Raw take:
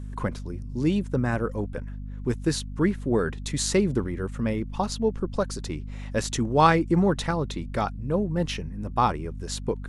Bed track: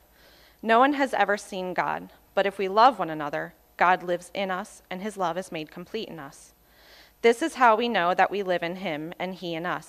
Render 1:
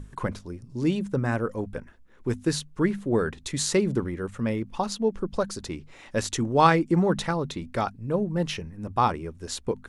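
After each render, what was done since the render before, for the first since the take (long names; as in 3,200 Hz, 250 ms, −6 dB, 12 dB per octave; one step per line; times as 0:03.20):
mains-hum notches 50/100/150/200/250 Hz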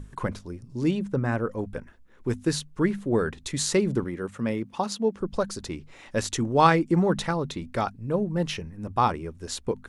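0:00.91–0:01.59: high-shelf EQ 4,600 Hz −7 dB
0:04.04–0:05.21: high-pass filter 120 Hz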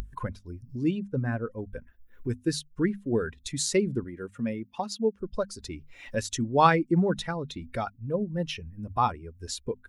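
spectral dynamics exaggerated over time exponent 1.5
upward compression, threshold −30 dBFS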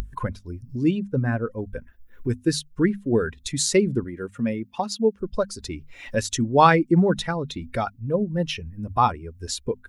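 level +5.5 dB
brickwall limiter −3 dBFS, peak gain reduction 2 dB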